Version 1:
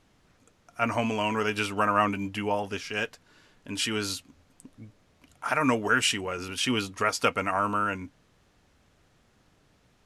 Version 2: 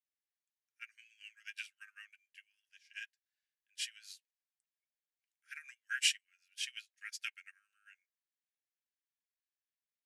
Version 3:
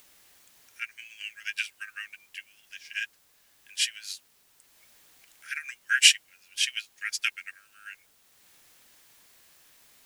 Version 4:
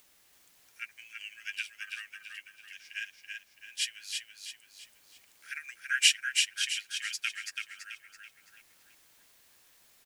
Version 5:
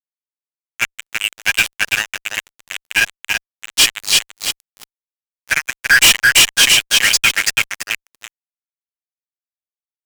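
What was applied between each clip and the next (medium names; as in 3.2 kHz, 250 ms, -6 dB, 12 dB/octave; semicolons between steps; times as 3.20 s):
Chebyshev high-pass 1.6 kHz, order 6; upward expansion 2.5:1, over -43 dBFS; trim -2.5 dB
in parallel at -1 dB: upward compressor, threshold -44 dBFS; on the sum: word length cut 12-bit, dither triangular; trim +8 dB
feedback delay 332 ms, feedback 41%, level -4.5 dB; trim -5.5 dB
fuzz box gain 36 dB, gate -42 dBFS; trim +7 dB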